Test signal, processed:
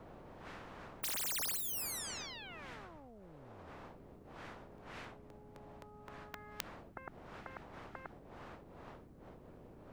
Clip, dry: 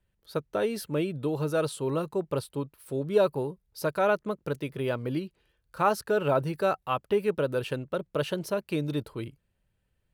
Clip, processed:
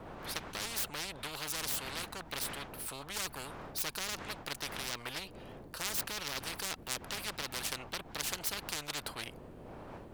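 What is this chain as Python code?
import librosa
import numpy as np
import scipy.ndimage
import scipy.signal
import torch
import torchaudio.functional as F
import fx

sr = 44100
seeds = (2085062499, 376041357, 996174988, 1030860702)

y = fx.self_delay(x, sr, depth_ms=0.37)
y = fx.dmg_wind(y, sr, seeds[0], corner_hz=160.0, level_db=-35.0)
y = fx.spectral_comp(y, sr, ratio=10.0)
y = y * librosa.db_to_amplitude(-4.0)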